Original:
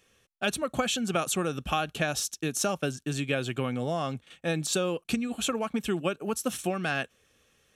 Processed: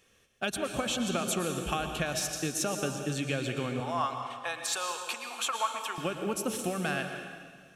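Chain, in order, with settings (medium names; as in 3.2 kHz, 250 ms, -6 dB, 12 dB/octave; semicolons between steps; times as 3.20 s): compression 3:1, threshold -29 dBFS, peak gain reduction 6 dB; 3.80–5.98 s: resonant high-pass 970 Hz, resonance Q 3.6; reverberation RT60 1.7 s, pre-delay 106 ms, DRR 5 dB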